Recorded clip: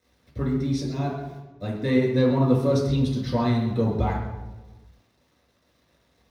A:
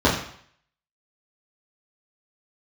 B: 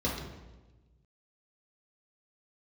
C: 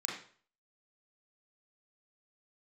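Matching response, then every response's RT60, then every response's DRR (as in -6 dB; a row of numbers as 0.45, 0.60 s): B; 0.60, 1.2, 0.45 s; -7.5, -5.0, -4.0 dB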